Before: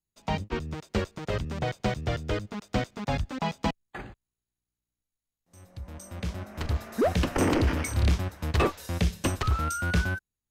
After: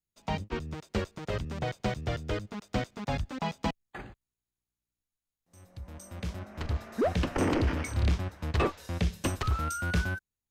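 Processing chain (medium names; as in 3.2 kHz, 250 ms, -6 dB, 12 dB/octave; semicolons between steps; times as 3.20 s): 6.39–9.14 s: treble shelf 8.7 kHz -10.5 dB; trim -3 dB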